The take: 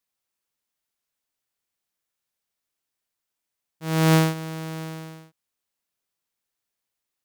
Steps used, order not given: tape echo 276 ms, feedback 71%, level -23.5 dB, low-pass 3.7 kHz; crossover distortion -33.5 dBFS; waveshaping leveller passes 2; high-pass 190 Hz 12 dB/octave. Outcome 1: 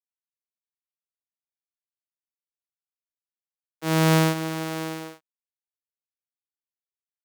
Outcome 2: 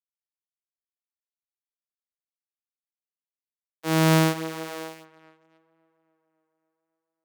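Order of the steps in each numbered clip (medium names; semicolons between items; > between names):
waveshaping leveller > tape echo > crossover distortion > high-pass; crossover distortion > tape echo > waveshaping leveller > high-pass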